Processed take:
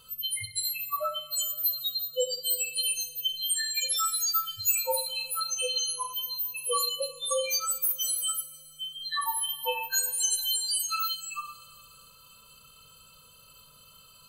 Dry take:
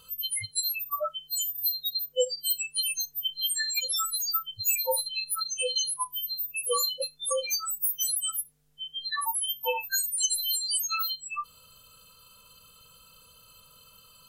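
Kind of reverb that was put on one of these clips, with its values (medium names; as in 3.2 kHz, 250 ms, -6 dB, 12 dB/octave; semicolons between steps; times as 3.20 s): two-slope reverb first 0.38 s, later 2.8 s, from -21 dB, DRR 2 dB; trim -1.5 dB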